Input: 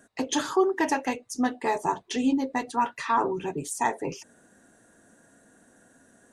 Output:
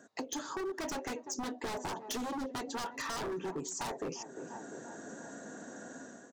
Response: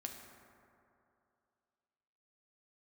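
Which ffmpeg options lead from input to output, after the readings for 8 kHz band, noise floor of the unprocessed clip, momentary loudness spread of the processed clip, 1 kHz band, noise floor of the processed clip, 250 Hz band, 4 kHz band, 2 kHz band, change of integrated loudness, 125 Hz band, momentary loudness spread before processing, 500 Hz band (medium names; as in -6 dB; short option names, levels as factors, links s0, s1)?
-4.5 dB, -60 dBFS, 9 LU, -13.5 dB, -54 dBFS, -12.0 dB, -5.5 dB, -9.5 dB, -12.5 dB, -6.5 dB, 8 LU, -10.0 dB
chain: -filter_complex "[0:a]dynaudnorm=f=500:g=3:m=3.76,aeval=exprs='clip(val(0),-1,0.15)':c=same,highshelf=f=5600:g=3,aresample=16000,aresample=44100,highpass=190,asplit=2[s0][s1];[s1]adelay=349,lowpass=f=1200:p=1,volume=0.0891,asplit=2[s2][s3];[s3]adelay=349,lowpass=f=1200:p=1,volume=0.55,asplit=2[s4][s5];[s5]adelay=349,lowpass=f=1200:p=1,volume=0.55,asplit=2[s6][s7];[s7]adelay=349,lowpass=f=1200:p=1,volume=0.55[s8];[s2][s4][s6][s8]amix=inputs=4:normalize=0[s9];[s0][s9]amix=inputs=2:normalize=0,aeval=exprs='0.126*(abs(mod(val(0)/0.126+3,4)-2)-1)':c=same,equalizer=f=2600:t=o:w=1.3:g=-7.5,acompressor=threshold=0.00891:ratio=4,volume=1.26"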